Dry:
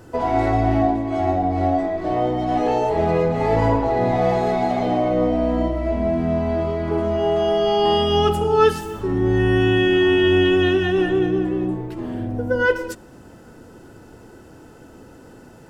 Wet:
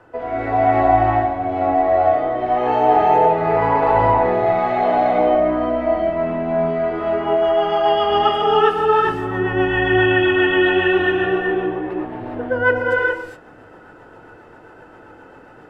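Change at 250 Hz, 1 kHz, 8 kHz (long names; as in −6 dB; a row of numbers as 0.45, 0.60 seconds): −2.0 dB, +6.5 dB, can't be measured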